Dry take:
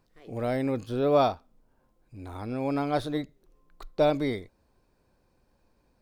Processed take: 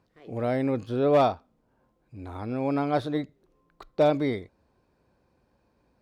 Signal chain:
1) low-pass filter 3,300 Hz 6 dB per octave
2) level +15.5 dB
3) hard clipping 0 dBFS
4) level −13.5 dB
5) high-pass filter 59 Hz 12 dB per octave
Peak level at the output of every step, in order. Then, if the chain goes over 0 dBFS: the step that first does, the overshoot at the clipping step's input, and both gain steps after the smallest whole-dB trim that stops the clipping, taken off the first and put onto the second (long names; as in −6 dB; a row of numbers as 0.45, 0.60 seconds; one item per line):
−11.0, +4.5, 0.0, −13.5, −12.0 dBFS
step 2, 4.5 dB
step 2 +10.5 dB, step 4 −8.5 dB